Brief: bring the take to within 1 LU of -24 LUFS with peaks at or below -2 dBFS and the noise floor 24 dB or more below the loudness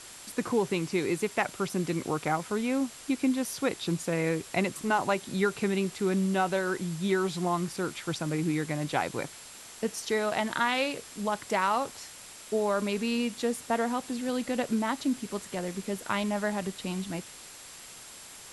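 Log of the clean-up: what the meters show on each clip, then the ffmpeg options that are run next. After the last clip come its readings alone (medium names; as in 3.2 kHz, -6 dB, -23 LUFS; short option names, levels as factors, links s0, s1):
steady tone 7.6 kHz; tone level -53 dBFS; noise floor -47 dBFS; noise floor target -54 dBFS; loudness -30.0 LUFS; peak level -12.5 dBFS; loudness target -24.0 LUFS
-> -af "bandreject=f=7600:w=30"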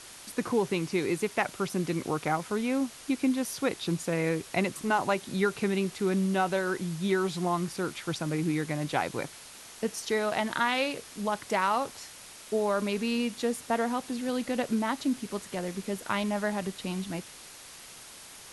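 steady tone not found; noise floor -48 dBFS; noise floor target -54 dBFS
-> -af "afftdn=nr=6:nf=-48"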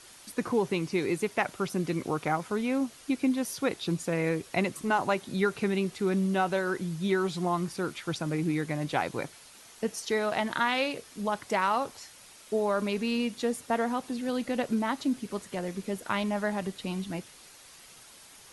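noise floor -52 dBFS; noise floor target -54 dBFS
-> -af "afftdn=nr=6:nf=-52"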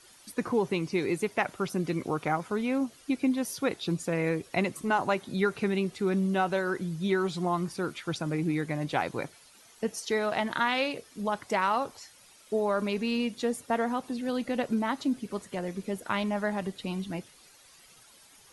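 noise floor -57 dBFS; loudness -30.5 LUFS; peak level -13.0 dBFS; loudness target -24.0 LUFS
-> -af "volume=2.11"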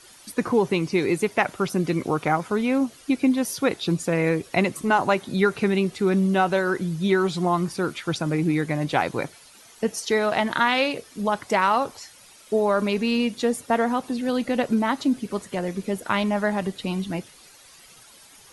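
loudness -24.0 LUFS; peak level -6.5 dBFS; noise floor -50 dBFS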